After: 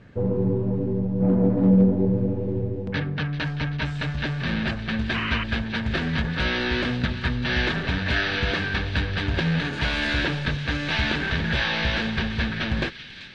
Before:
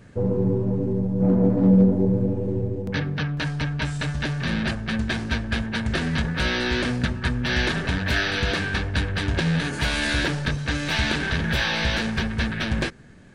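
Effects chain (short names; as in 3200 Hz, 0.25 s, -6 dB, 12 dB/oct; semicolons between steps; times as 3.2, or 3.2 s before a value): Chebyshev low-pass 3500 Hz, order 2; on a send: thin delay 0.387 s, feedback 73%, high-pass 2300 Hz, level -10.5 dB; on the sum: painted sound noise, 5.14–5.44, 950–3100 Hz -29 dBFS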